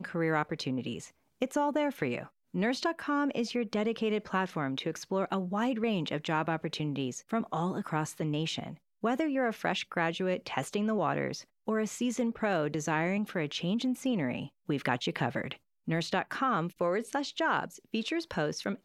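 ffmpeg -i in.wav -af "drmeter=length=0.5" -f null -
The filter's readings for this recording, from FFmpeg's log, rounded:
Channel 1: DR: 14.5
Overall DR: 14.5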